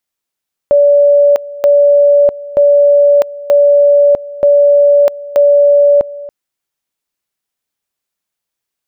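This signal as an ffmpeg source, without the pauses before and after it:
-f lavfi -i "aevalsrc='pow(10,(-4-19*gte(mod(t,0.93),0.65))/20)*sin(2*PI*575*t)':d=5.58:s=44100"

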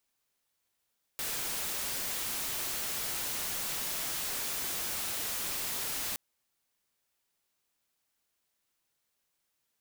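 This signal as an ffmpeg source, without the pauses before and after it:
-f lavfi -i "anoisesrc=c=white:a=0.0308:d=4.97:r=44100:seed=1"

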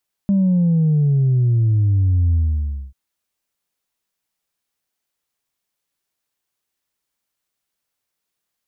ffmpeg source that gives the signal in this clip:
-f lavfi -i "aevalsrc='0.224*clip((2.64-t)/0.59,0,1)*tanh(1.06*sin(2*PI*200*2.64/log(65/200)*(exp(log(65/200)*t/2.64)-1)))/tanh(1.06)':d=2.64:s=44100"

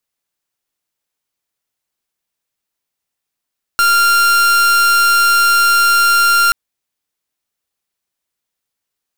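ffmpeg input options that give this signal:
-f lavfi -i "aevalsrc='0.282*(2*lt(mod(1390*t,1),0.42)-1)':d=2.73:s=44100"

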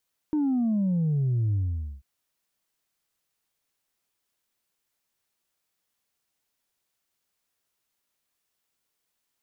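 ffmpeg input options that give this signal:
-f lavfi -i "aevalsrc='0.0794*clip((1.69-t)/0.48,0,1)*tanh(1.12*sin(2*PI*310*1.69/log(65/310)*(exp(log(65/310)*t/1.69)-1)))/tanh(1.12)':d=1.69:s=44100"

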